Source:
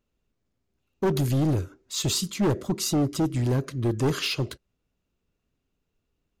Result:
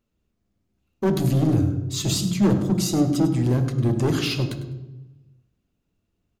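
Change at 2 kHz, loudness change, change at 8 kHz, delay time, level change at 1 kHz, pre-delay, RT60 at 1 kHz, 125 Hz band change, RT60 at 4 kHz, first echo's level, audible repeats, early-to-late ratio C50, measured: +0.5 dB, +4.0 dB, +0.5 dB, 0.101 s, +1.0 dB, 3 ms, 1.0 s, +5.0 dB, 0.75 s, -14.0 dB, 1, 9.0 dB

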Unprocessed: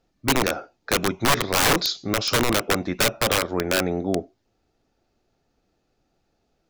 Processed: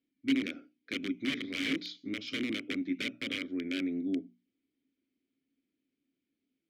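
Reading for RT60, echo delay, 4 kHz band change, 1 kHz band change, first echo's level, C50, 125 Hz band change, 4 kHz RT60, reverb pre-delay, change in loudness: none, none, -13.5 dB, -30.5 dB, none, none, -20.5 dB, none, none, -12.5 dB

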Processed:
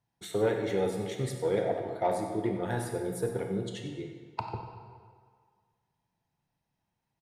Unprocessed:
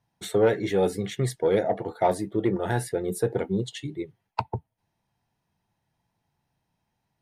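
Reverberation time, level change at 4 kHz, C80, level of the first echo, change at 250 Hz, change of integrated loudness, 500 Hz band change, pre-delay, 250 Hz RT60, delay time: 1.8 s, -5.5 dB, 5.5 dB, -12.0 dB, -5.5 dB, -5.5 dB, -5.5 dB, 23 ms, 1.7 s, 94 ms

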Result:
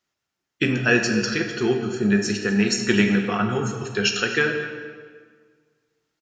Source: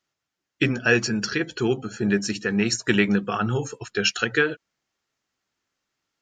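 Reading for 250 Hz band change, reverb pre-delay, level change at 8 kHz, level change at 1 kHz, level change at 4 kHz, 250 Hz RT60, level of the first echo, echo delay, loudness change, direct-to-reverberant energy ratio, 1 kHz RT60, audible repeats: +2.5 dB, 3 ms, +1.0 dB, +1.5 dB, +1.5 dB, 1.9 s, -16.5 dB, 0.25 s, +1.5 dB, 3.0 dB, 1.7 s, 1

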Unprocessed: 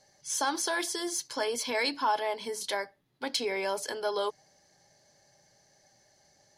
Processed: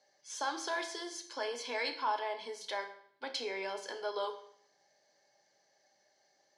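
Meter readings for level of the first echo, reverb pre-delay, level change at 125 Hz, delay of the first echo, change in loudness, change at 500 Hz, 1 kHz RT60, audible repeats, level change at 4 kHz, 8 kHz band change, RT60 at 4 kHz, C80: none, 15 ms, n/a, none, -6.5 dB, -6.5 dB, 0.60 s, none, -6.5 dB, -12.0 dB, 0.60 s, 13.5 dB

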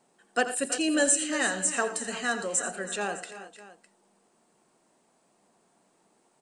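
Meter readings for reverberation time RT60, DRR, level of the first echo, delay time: none, none, -12.0 dB, 85 ms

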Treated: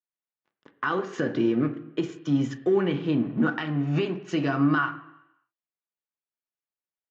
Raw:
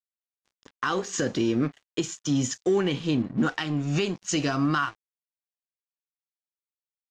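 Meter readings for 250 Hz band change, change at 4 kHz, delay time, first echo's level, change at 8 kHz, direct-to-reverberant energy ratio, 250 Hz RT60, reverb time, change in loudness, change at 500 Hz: +1.5 dB, -7.0 dB, none, none, under -15 dB, 7.0 dB, 0.85 s, 0.85 s, +0.5 dB, +1.0 dB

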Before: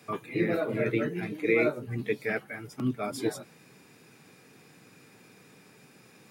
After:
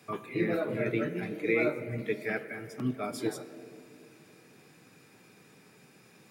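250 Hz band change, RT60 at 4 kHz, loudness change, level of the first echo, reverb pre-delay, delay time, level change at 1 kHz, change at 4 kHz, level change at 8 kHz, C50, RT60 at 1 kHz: -2.0 dB, 1.4 s, -2.5 dB, none, 3 ms, none, -2.0 dB, -2.5 dB, -2.5 dB, 12.5 dB, 2.1 s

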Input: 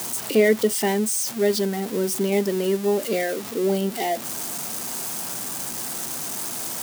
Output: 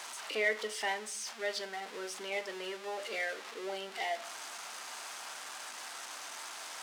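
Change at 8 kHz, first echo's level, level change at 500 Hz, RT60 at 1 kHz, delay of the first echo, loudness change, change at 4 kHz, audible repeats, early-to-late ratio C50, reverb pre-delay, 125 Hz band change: -16.0 dB, none, -17.5 dB, 0.50 s, none, -14.5 dB, -8.0 dB, none, 16.5 dB, 6 ms, under -30 dB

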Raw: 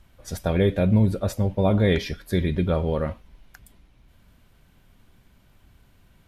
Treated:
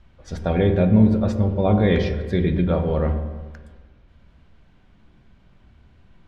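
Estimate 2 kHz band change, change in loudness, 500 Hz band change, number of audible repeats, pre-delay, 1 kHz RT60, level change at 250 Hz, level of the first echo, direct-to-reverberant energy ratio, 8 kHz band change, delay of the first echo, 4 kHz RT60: +1.0 dB, +3.0 dB, +2.5 dB, none, 13 ms, 1.4 s, +4.5 dB, none, 10.0 dB, n/a, none, 1.4 s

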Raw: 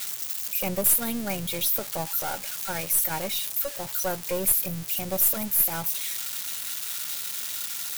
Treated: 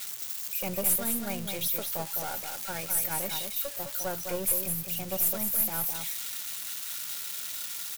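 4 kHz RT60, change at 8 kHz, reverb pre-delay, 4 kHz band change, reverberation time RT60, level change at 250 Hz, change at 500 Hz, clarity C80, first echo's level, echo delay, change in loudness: none, -4.0 dB, none, -4.0 dB, none, -4.0 dB, -4.0 dB, none, -6.0 dB, 0.208 s, -4.0 dB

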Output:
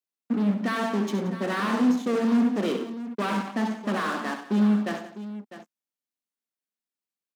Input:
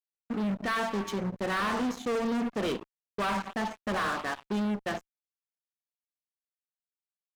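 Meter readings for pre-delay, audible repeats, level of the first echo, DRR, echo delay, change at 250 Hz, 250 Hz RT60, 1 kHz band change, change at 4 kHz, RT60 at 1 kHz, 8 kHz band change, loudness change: none, 3, -10.0 dB, none, 68 ms, +8.5 dB, none, +1.5 dB, +1.0 dB, none, +1.0 dB, +5.5 dB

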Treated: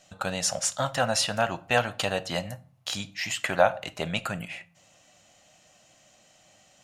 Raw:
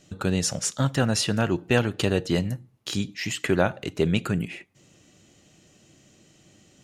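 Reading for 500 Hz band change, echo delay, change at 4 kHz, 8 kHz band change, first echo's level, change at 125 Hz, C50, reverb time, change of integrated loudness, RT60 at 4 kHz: -1.5 dB, none, +0.5 dB, 0.0 dB, none, -10.0 dB, 21.0 dB, 0.40 s, -2.0 dB, 0.25 s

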